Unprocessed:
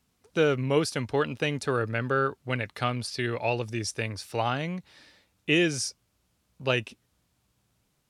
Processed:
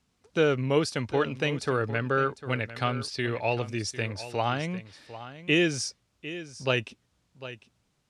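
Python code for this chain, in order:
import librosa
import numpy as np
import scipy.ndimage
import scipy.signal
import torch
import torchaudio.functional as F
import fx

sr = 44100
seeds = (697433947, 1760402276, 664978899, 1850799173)

y = scipy.signal.sosfilt(scipy.signal.butter(2, 8200.0, 'lowpass', fs=sr, output='sos'), x)
y = y + 10.0 ** (-14.0 / 20.0) * np.pad(y, (int(751 * sr / 1000.0), 0))[:len(y)]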